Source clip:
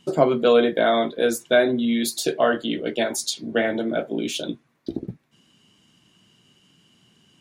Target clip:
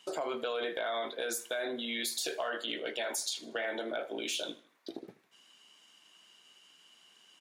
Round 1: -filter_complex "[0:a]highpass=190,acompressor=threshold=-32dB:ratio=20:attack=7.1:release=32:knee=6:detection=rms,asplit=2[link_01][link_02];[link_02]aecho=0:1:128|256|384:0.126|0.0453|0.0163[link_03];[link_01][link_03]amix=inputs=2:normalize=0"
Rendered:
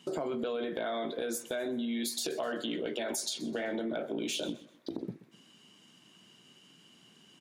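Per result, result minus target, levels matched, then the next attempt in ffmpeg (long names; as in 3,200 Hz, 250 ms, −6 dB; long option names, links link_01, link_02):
echo 50 ms late; 250 Hz band +8.0 dB
-filter_complex "[0:a]highpass=190,acompressor=threshold=-32dB:ratio=20:attack=7.1:release=32:knee=6:detection=rms,asplit=2[link_01][link_02];[link_02]aecho=0:1:78|156|234:0.126|0.0453|0.0163[link_03];[link_01][link_03]amix=inputs=2:normalize=0"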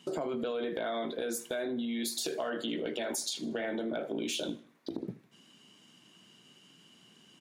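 250 Hz band +7.5 dB
-filter_complex "[0:a]highpass=670,acompressor=threshold=-32dB:ratio=20:attack=7.1:release=32:knee=6:detection=rms,asplit=2[link_01][link_02];[link_02]aecho=0:1:78|156|234:0.126|0.0453|0.0163[link_03];[link_01][link_03]amix=inputs=2:normalize=0"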